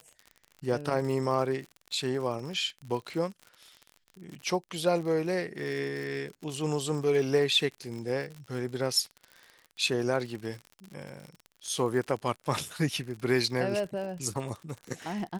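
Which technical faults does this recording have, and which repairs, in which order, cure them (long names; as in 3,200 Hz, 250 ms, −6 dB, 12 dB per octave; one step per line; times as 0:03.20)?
surface crackle 56 per second −36 dBFS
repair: click removal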